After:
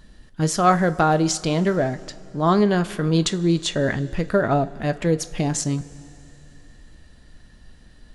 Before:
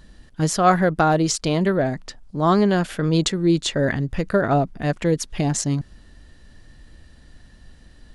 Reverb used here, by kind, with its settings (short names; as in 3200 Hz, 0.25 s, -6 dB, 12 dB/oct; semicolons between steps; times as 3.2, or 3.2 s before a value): two-slope reverb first 0.25 s, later 3.1 s, from -18 dB, DRR 10.5 dB; gain -1 dB